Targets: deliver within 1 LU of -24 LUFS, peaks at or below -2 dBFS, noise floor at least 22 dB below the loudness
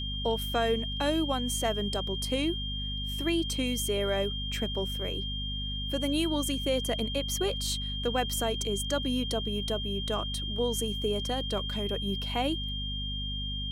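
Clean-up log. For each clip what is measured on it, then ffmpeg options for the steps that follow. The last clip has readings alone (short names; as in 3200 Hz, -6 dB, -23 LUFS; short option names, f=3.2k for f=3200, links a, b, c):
hum 50 Hz; harmonics up to 250 Hz; hum level -33 dBFS; steady tone 3200 Hz; tone level -35 dBFS; loudness -30.5 LUFS; peak -15.0 dBFS; loudness target -24.0 LUFS
-> -af "bandreject=f=50:t=h:w=4,bandreject=f=100:t=h:w=4,bandreject=f=150:t=h:w=4,bandreject=f=200:t=h:w=4,bandreject=f=250:t=h:w=4"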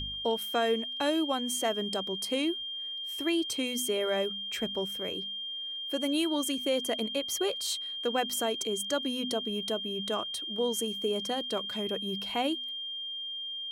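hum none; steady tone 3200 Hz; tone level -35 dBFS
-> -af "bandreject=f=3.2k:w=30"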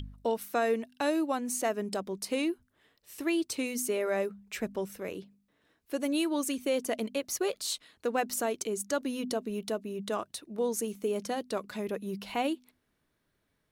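steady tone none; loudness -32.5 LUFS; peak -17.0 dBFS; loudness target -24.0 LUFS
-> -af "volume=8.5dB"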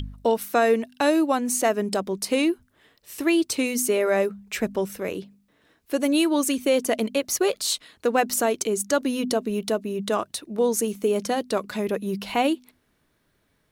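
loudness -24.0 LUFS; peak -8.5 dBFS; noise floor -68 dBFS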